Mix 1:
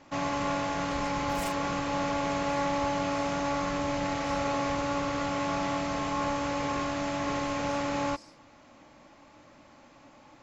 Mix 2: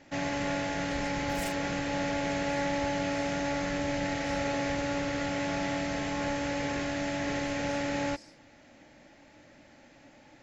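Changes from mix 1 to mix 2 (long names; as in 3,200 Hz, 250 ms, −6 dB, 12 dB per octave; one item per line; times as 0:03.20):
first sound: add parametric band 1,800 Hz +5.5 dB 0.43 octaves
master: add parametric band 1,100 Hz −13.5 dB 0.43 octaves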